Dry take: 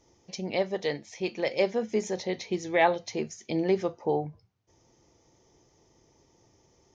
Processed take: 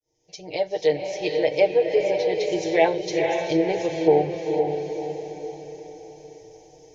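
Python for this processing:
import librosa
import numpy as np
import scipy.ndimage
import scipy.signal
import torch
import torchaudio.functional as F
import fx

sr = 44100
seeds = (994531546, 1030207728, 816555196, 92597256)

p1 = fx.fade_in_head(x, sr, length_s=0.91)
p2 = fx.fixed_phaser(p1, sr, hz=520.0, stages=4)
p3 = p2 + 0.82 * np.pad(p2, (int(6.5 * sr / 1000.0), 0))[:len(p2)]
p4 = p3 + fx.echo_diffused(p3, sr, ms=481, feedback_pct=49, wet_db=-4.0, dry=0)
p5 = fx.env_lowpass_down(p4, sr, base_hz=2500.0, full_db=-23.5)
y = p5 * 10.0 ** (6.5 / 20.0)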